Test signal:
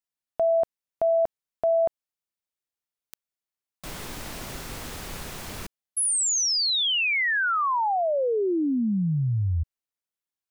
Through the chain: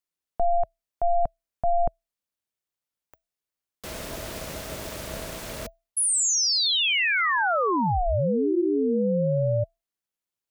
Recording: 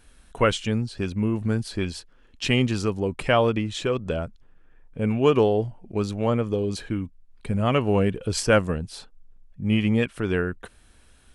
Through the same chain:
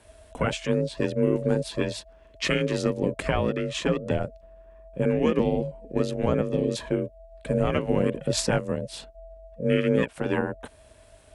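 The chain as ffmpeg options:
-af "afreqshift=-320,alimiter=limit=0.211:level=0:latency=1:release=421,aeval=exprs='val(0)*sin(2*PI*350*n/s)':c=same,volume=1.58"

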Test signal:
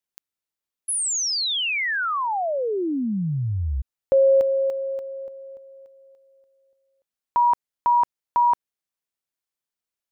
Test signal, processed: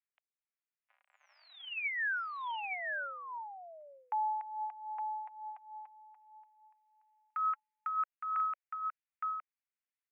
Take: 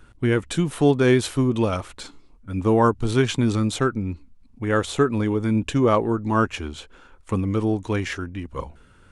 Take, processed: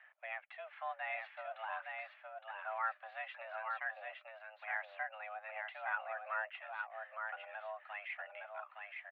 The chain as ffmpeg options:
-af "aderivative,acompressor=threshold=0.00224:ratio=1.5:attack=0.13:release=209:detection=peak,aphaser=in_gain=1:out_gain=1:delay=4.5:decay=0.38:speed=0.48:type=sinusoidal,aecho=1:1:864:0.631,highpass=f=290:t=q:w=0.5412,highpass=f=290:t=q:w=1.307,lowpass=f=2100:t=q:w=0.5176,lowpass=f=2100:t=q:w=0.7071,lowpass=f=2100:t=q:w=1.932,afreqshift=320,volume=2.51"

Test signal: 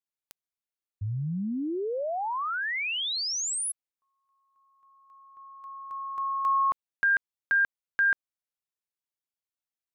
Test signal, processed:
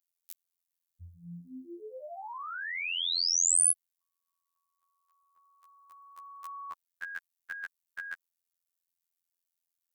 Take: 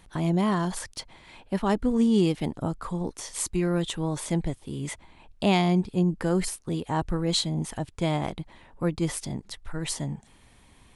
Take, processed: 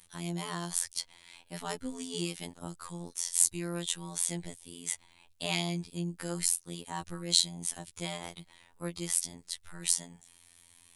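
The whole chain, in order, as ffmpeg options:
-af "crystalizer=i=9:c=0,afftfilt=real='hypot(re,im)*cos(PI*b)':imag='0':win_size=2048:overlap=0.75,volume=0.266"

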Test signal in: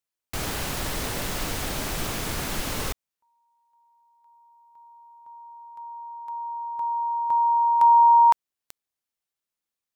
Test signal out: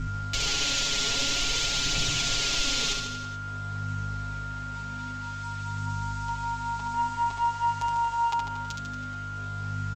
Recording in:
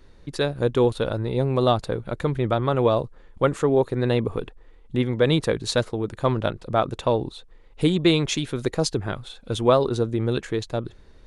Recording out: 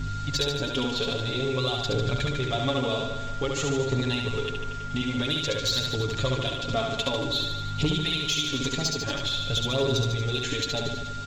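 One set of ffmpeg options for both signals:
-filter_complex "[0:a]highshelf=f=2100:t=q:w=1.5:g=12,aeval=exprs='val(0)+0.02*(sin(2*PI*50*n/s)+sin(2*PI*2*50*n/s)/2+sin(2*PI*3*50*n/s)/3+sin(2*PI*4*50*n/s)/4+sin(2*PI*5*50*n/s)/5)':c=same,acompressor=threshold=0.0562:ratio=12:attack=7.2:release=177:knee=1:detection=rms,aphaser=in_gain=1:out_gain=1:delay=4.9:decay=0.48:speed=0.51:type=triangular,aresample=16000,acrusher=bits=7:mix=0:aa=0.000001,aresample=44100,aeval=exprs='val(0)+0.00631*sin(2*PI*1400*n/s)':c=same,aecho=1:1:7.2:1,asoftclip=type=tanh:threshold=0.168,asplit=2[s0][s1];[s1]aecho=0:1:70|147|231.7|324.9|427.4:0.631|0.398|0.251|0.158|0.1[s2];[s0][s2]amix=inputs=2:normalize=0,volume=0.841"

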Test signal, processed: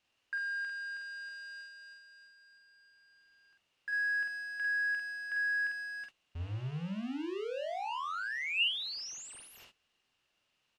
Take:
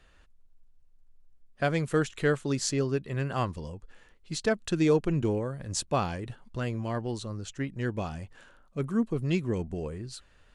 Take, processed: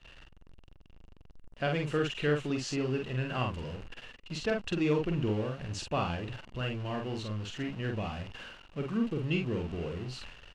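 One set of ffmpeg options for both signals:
-filter_complex "[0:a]aeval=exprs='val(0)+0.5*0.0178*sgn(val(0))':c=same,agate=range=0.0631:threshold=0.00891:ratio=16:detection=peak,lowpass=4500,equalizer=f=2800:w=7.7:g=13,asplit=2[s0][s1];[s1]adelay=47,volume=0.668[s2];[s0][s2]amix=inputs=2:normalize=0,volume=0.501"

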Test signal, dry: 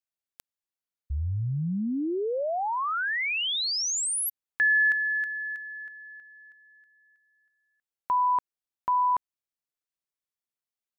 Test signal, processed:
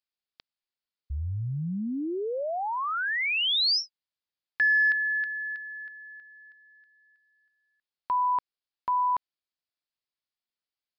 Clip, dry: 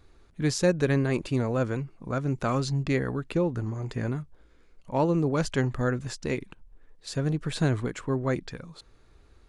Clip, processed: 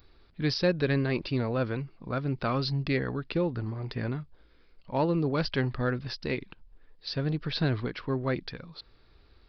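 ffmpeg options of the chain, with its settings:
-filter_complex "[0:a]asplit=2[s0][s1];[s1]asoftclip=type=hard:threshold=0.106,volume=0.282[s2];[s0][s2]amix=inputs=2:normalize=0,aresample=11025,aresample=44100,aemphasis=mode=production:type=75kf,volume=0.596"

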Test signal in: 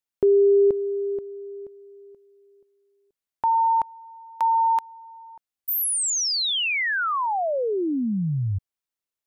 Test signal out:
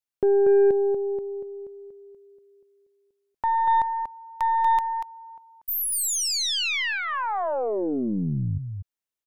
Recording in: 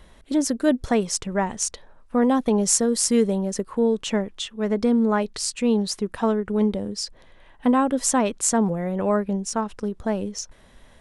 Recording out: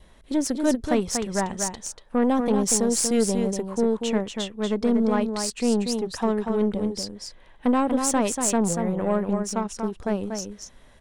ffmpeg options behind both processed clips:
-af "adynamicequalizer=threshold=0.00562:dfrequency=1400:dqfactor=3.4:tfrequency=1400:tqfactor=3.4:attack=5:release=100:ratio=0.375:range=3.5:mode=cutabove:tftype=bell,aecho=1:1:238:0.501,aeval=exprs='0.631*(cos(1*acos(clip(val(0)/0.631,-1,1)))-cos(1*PI/2))+0.0251*(cos(8*acos(clip(val(0)/0.631,-1,1)))-cos(8*PI/2))':c=same,volume=0.75"

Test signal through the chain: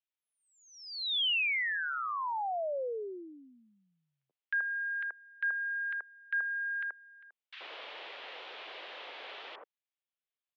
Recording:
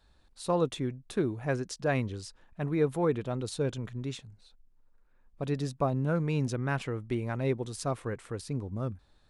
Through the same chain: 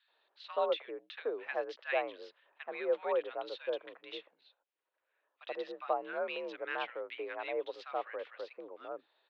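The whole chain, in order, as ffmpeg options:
-filter_complex "[0:a]highpass=f=390:t=q:w=0.5412,highpass=f=390:t=q:w=1.307,lowpass=f=3400:t=q:w=0.5176,lowpass=f=3400:t=q:w=0.7071,lowpass=f=3400:t=q:w=1.932,afreqshift=58,highshelf=f=2600:g=10,acrossover=split=1400[s0][s1];[s0]adelay=80[s2];[s2][s1]amix=inputs=2:normalize=0,volume=0.75"

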